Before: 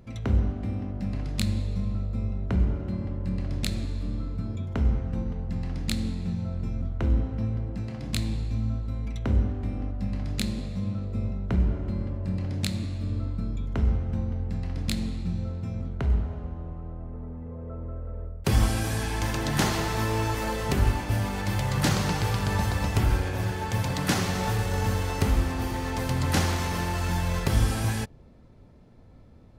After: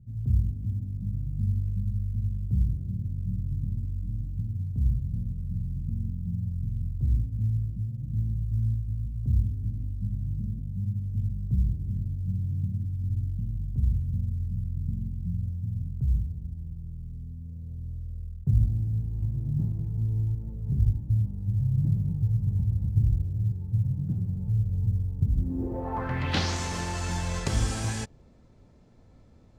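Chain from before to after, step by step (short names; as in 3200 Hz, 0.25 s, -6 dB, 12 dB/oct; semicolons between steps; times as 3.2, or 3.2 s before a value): low-pass sweep 130 Hz -> 7400 Hz, 25.32–26.57; short-mantissa float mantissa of 6-bit; gain -3.5 dB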